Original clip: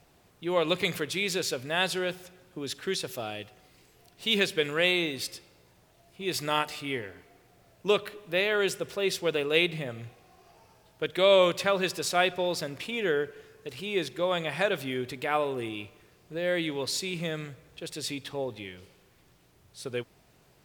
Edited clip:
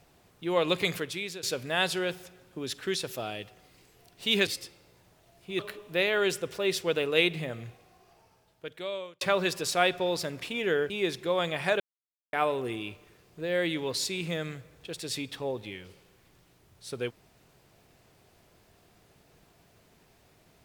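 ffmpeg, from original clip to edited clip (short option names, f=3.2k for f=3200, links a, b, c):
-filter_complex "[0:a]asplit=8[a][b][c][d][e][f][g][h];[a]atrim=end=1.43,asetpts=PTS-STARTPTS,afade=t=out:st=0.9:d=0.53:silence=0.188365[i];[b]atrim=start=1.43:end=4.472,asetpts=PTS-STARTPTS,afade=t=in:d=0.004:c=hsin:silence=0.188365[j];[c]atrim=start=5.178:end=6.302[k];[d]atrim=start=7.968:end=11.59,asetpts=PTS-STARTPTS,afade=t=out:st=1.992:d=1.63[l];[e]atrim=start=11.59:end=13.282,asetpts=PTS-STARTPTS,afade=t=in:d=0.004:c=hsin[m];[f]atrim=start=13.828:end=14.73,asetpts=PTS-STARTPTS,afade=t=out:st=0.898:d=0.004:c=hsin[n];[g]atrim=start=14.73:end=15.26,asetpts=PTS-STARTPTS,volume=0[o];[h]atrim=start=15.26,asetpts=PTS-STARTPTS,afade=t=in:d=0.004:c=hsin[p];[i][j]concat=n=2:v=0:a=1[q];[q][k]acrossfade=d=0.004:c1=hsin:c2=hsin[r];[l][m]concat=n=2:v=0:a=1[s];[r][s]acrossfade=d=0.004:c1=hsin:c2=hsin[t];[n][o][p]concat=n=3:v=0:a=1[u];[t][u]acrossfade=d=0.004:c1=hsin:c2=hsin"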